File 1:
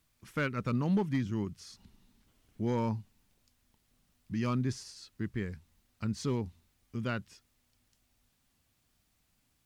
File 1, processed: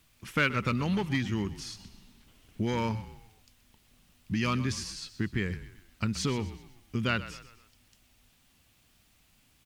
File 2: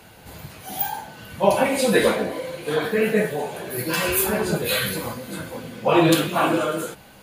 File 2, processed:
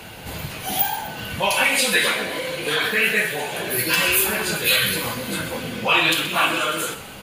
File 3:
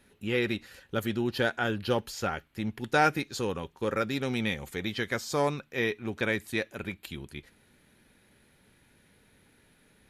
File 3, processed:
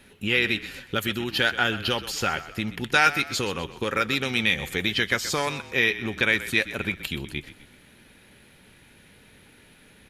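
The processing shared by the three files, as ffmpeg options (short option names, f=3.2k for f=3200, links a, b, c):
-filter_complex "[0:a]equalizer=f=2.8k:t=o:w=0.79:g=5,acrossover=split=1200[a][b];[a]acompressor=threshold=-34dB:ratio=12[c];[b]alimiter=limit=-15.5dB:level=0:latency=1:release=407[d];[c][d]amix=inputs=2:normalize=0,asplit=5[e][f][g][h][i];[f]adelay=126,afreqshift=-36,volume=-14.5dB[j];[g]adelay=252,afreqshift=-72,volume=-21.6dB[k];[h]adelay=378,afreqshift=-108,volume=-28.8dB[l];[i]adelay=504,afreqshift=-144,volume=-35.9dB[m];[e][j][k][l][m]amix=inputs=5:normalize=0,volume=8dB"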